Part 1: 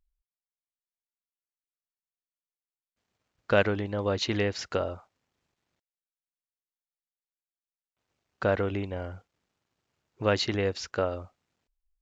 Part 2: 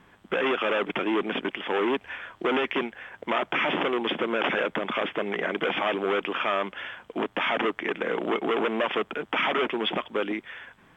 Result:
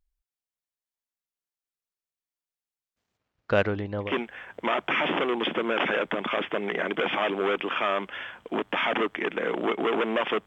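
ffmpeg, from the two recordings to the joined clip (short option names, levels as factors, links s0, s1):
-filter_complex "[0:a]asettb=1/sr,asplit=3[s0][s1][s2];[s0]atrim=end=3.174[s3];[s1]atrim=start=3.17:end=4.14,asetpts=PTS-STARTPTS,afade=t=in:d=0.004:c=qsin,afade=t=out:st=0.966:d=0.004:c=qsin,adynamicsmooth=sensitivity=1:basefreq=5300[s4];[s2]atrim=start=4.136[s5];[s3][s4]acrossfade=d=0.004:c1=hsin:c2=qsin[s6];[s6][s5]acrossfade=d=0.004:c1=qsin:c2=hsin,apad=whole_dur=10.46,atrim=end=10.46,atrim=end=4.14,asetpts=PTS-STARTPTS[s7];[1:a]atrim=start=2.64:end=9.1,asetpts=PTS-STARTPTS[s8];[s7][s8]acrossfade=d=0.14:c1=tri:c2=tri"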